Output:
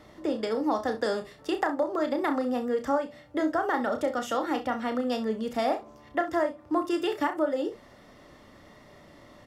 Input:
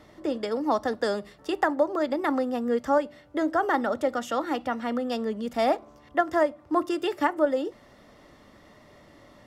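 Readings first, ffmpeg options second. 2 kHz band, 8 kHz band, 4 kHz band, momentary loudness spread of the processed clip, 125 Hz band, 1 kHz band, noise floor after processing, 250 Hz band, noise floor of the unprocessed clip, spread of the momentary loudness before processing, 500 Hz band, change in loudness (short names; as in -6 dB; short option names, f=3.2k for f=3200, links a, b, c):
-2.5 dB, 0.0 dB, -0.5 dB, 5 LU, n/a, -2.5 dB, -53 dBFS, -1.0 dB, -54 dBFS, 6 LU, -2.0 dB, -2.0 dB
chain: -filter_complex "[0:a]acompressor=threshold=-24dB:ratio=3,asplit=2[a][b];[b]aecho=0:1:32|65:0.422|0.2[c];[a][c]amix=inputs=2:normalize=0"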